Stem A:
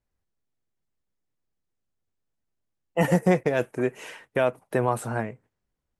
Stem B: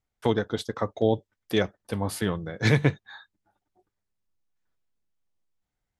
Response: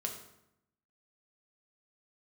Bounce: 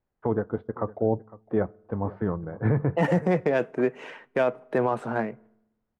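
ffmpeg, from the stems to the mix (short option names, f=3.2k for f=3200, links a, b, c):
-filter_complex "[0:a]highshelf=f=3.9k:g=-10,adynamicsmooth=sensitivity=5:basefreq=4.2k,highpass=f=150:w=0.5412,highpass=f=150:w=1.3066,volume=2dB,asplit=2[a][b];[b]volume=-22dB[c];[1:a]lowpass=f=1.3k:w=0.5412,lowpass=f=1.3k:w=1.3066,volume=-0.5dB,asplit=3[d][e][f];[e]volume=-24dB[g];[f]volume=-19.5dB[h];[2:a]atrim=start_sample=2205[i];[c][g]amix=inputs=2:normalize=0[j];[j][i]afir=irnorm=-1:irlink=0[k];[h]aecho=0:1:507:1[l];[a][d][k][l]amix=inputs=4:normalize=0,alimiter=limit=-13.5dB:level=0:latency=1:release=19"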